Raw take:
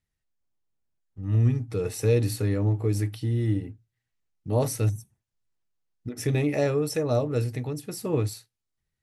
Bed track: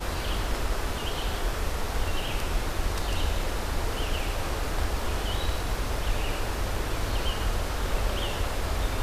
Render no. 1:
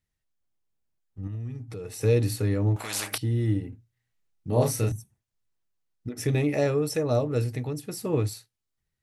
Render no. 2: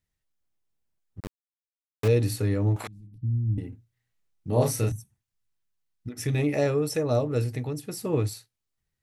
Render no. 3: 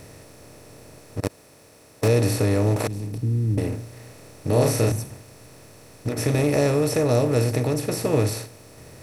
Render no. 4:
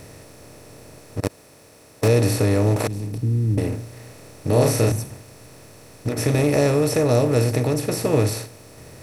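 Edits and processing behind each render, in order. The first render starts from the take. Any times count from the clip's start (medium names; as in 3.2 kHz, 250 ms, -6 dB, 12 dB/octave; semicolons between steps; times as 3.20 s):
1.27–2.01 s: compression 3:1, threshold -36 dBFS; 2.76–3.18 s: spectrum-flattening compressor 10:1; 3.69–4.92 s: doubling 33 ms -3 dB
1.20–2.08 s: small samples zeroed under -27 dBFS; 2.87–3.58 s: inverse Chebyshev low-pass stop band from 540 Hz, stop band 50 dB; 4.90–6.39 s: peaking EQ 480 Hz -6 dB 1.7 oct
spectral levelling over time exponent 0.4
trim +2 dB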